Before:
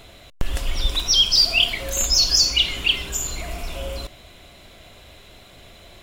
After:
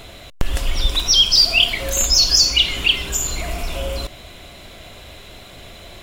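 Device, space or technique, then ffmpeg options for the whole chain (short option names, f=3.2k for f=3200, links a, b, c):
parallel compression: -filter_complex "[0:a]asplit=2[a][b];[b]acompressor=threshold=-30dB:ratio=6,volume=-3dB[c];[a][c]amix=inputs=2:normalize=0,volume=2dB"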